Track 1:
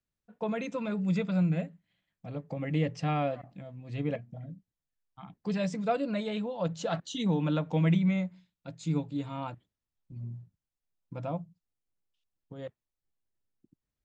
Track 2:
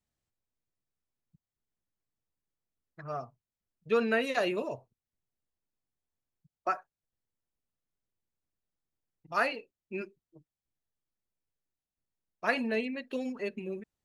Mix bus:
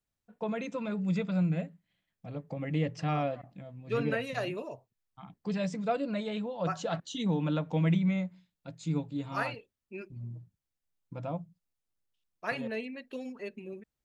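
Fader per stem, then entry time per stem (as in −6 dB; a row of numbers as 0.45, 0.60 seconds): −1.5, −5.0 decibels; 0.00, 0.00 seconds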